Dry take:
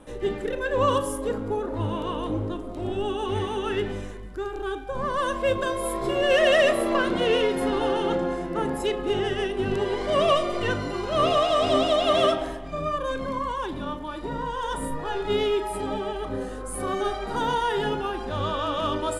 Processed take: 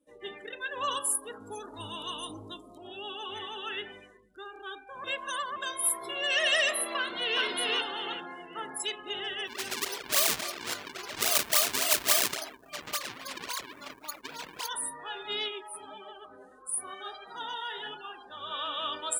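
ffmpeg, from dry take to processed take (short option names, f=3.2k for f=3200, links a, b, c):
-filter_complex "[0:a]asettb=1/sr,asplit=3[a][b][c];[a]atrim=end=1.404[d];[b]atrim=start=1.4:end=2.78,asetpts=PTS-STARTPTS,afade=t=in:d=0.004:c=qsin,afade=t=out:st=1.376:d=0.004:c=qsin,bass=f=250:g=9,treble=f=4k:g=14[e];[c]atrim=start=2.776[f];[d][e]acrossfade=d=0.004:c1=hsin:c2=qsin[g];[g][f]acrossfade=d=0.004:c1=qsin:c2=hsin,asplit=2[h][i];[i]afade=t=in:st=6.97:d=0.01,afade=t=out:st=7.42:d=0.01,aecho=0:1:390|780|1170|1560:0.944061|0.283218|0.0849655|0.0254896[j];[h][j]amix=inputs=2:normalize=0,asplit=3[k][l][m];[k]afade=t=out:st=9.46:d=0.02[n];[l]acrusher=samples=39:mix=1:aa=0.000001:lfo=1:lforange=62.4:lforate=3.6,afade=t=in:st=9.46:d=0.02,afade=t=out:st=14.67:d=0.02[o];[m]afade=t=in:st=14.67:d=0.02[p];[n][o][p]amix=inputs=3:normalize=0,asplit=3[q][r][s];[q]afade=t=out:st=15.48:d=0.02[t];[r]flanger=delay=5.4:depth=8.6:regen=44:speed=1.5:shape=sinusoidal,afade=t=in:st=15.48:d=0.02,afade=t=out:st=18.5:d=0.02[u];[s]afade=t=in:st=18.5:d=0.02[v];[t][u][v]amix=inputs=3:normalize=0,asplit=3[w][x][y];[w]atrim=end=5.042[z];[x]atrim=start=5.038:end=5.562,asetpts=PTS-STARTPTS,areverse[aa];[y]atrim=start=5.558[ab];[z][aa]acrossfade=d=0.004:c1=hsin:c2=hsin[ac];[ac][ab]acrossfade=d=0.004:c1=hsin:c2=hsin,afftdn=nr=29:nf=-41,aderivative,bandreject=f=530:w=12,volume=8.5dB"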